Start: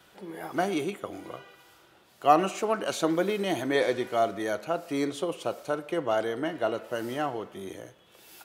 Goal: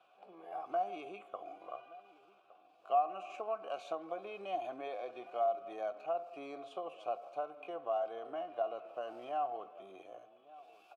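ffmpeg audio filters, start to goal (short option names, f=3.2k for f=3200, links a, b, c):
-filter_complex "[0:a]highpass=44,acompressor=threshold=-27dB:ratio=12,asplit=3[a][b][c];[a]bandpass=f=730:t=q:w=8,volume=0dB[d];[b]bandpass=f=1.09k:t=q:w=8,volume=-6dB[e];[c]bandpass=f=2.44k:t=q:w=8,volume=-9dB[f];[d][e][f]amix=inputs=3:normalize=0,asplit=2[g][h];[h]adelay=898,lowpass=f=1.3k:p=1,volume=-18.5dB,asplit=2[i][j];[j]adelay=898,lowpass=f=1.3k:p=1,volume=0.32,asplit=2[k][l];[l]adelay=898,lowpass=f=1.3k:p=1,volume=0.32[m];[g][i][k][m]amix=inputs=4:normalize=0,atempo=0.77,volume=2.5dB"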